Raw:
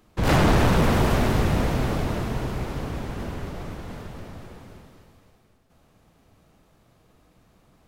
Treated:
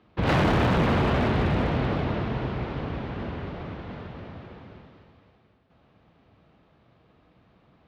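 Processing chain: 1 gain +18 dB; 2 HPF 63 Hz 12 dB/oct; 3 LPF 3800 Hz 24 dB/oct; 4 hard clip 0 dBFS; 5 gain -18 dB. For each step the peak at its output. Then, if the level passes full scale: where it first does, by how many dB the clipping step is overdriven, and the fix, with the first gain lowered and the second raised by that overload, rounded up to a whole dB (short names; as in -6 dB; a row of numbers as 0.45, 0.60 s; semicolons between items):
+5.5, +9.5, +9.0, 0.0, -18.0 dBFS; step 1, 9.0 dB; step 1 +9 dB, step 5 -9 dB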